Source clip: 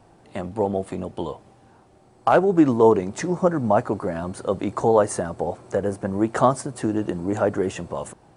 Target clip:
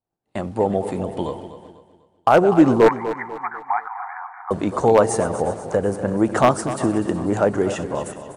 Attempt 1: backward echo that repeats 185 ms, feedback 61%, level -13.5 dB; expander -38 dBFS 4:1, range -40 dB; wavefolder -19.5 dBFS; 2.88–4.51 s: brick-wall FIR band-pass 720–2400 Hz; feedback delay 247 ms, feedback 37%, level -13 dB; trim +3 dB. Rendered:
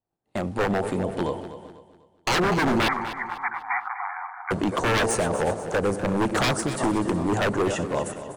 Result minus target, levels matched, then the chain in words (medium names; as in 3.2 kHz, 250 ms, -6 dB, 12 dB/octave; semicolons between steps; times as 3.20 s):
wavefolder: distortion +22 dB
backward echo that repeats 185 ms, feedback 61%, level -13.5 dB; expander -38 dBFS 4:1, range -40 dB; wavefolder -7.5 dBFS; 2.88–4.51 s: brick-wall FIR band-pass 720–2400 Hz; feedback delay 247 ms, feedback 37%, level -13 dB; trim +3 dB